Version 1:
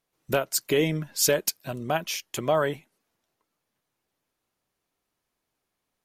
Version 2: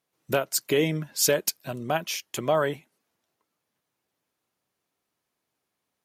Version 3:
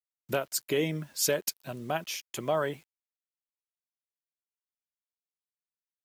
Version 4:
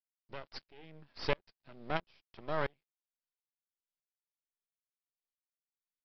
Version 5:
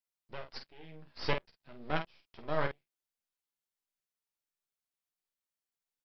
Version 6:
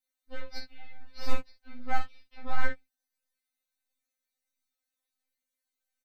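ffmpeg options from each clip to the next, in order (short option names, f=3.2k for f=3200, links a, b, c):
-af "highpass=88"
-af "acrusher=bits=8:mix=0:aa=0.000001,volume=-5dB"
-af "aresample=11025,aeval=exprs='max(val(0),0)':c=same,aresample=44100,aeval=exprs='val(0)*pow(10,-32*if(lt(mod(-1.5*n/s,1),2*abs(-1.5)/1000),1-mod(-1.5*n/s,1)/(2*abs(-1.5)/1000),(mod(-1.5*n/s,1)-2*abs(-1.5)/1000)/(1-2*abs(-1.5)/1000))/20)':c=same,volume=2dB"
-af "aecho=1:1:13|49:0.473|0.447"
-filter_complex "[0:a]acrossover=split=350|1400[a][b][c];[c]asoftclip=type=tanh:threshold=-39.5dB[d];[a][b][d]amix=inputs=3:normalize=0,asplit=2[e][f];[f]adelay=15,volume=-3.5dB[g];[e][g]amix=inputs=2:normalize=0,afftfilt=real='re*3.46*eq(mod(b,12),0)':imag='im*3.46*eq(mod(b,12),0)':win_size=2048:overlap=0.75,volume=5dB"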